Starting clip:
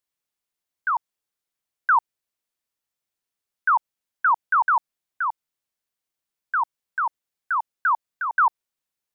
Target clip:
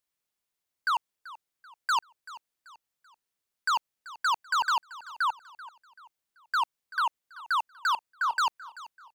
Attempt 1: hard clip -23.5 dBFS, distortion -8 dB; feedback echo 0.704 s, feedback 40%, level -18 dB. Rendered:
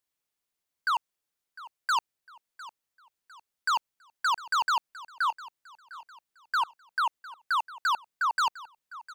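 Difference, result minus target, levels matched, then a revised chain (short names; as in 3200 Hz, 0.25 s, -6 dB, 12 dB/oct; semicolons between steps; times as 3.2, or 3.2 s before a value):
echo 0.319 s late
hard clip -23.5 dBFS, distortion -8 dB; feedback echo 0.385 s, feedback 40%, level -18 dB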